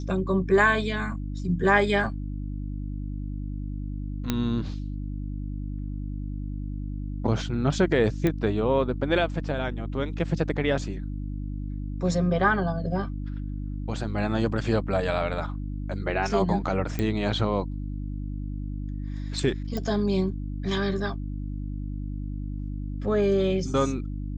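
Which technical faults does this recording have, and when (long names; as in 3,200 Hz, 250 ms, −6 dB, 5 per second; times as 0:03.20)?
mains hum 50 Hz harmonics 6 −32 dBFS
0:04.30: click −10 dBFS
0:08.27: click −13 dBFS
0:16.99: click −15 dBFS
0:19.77: click −18 dBFS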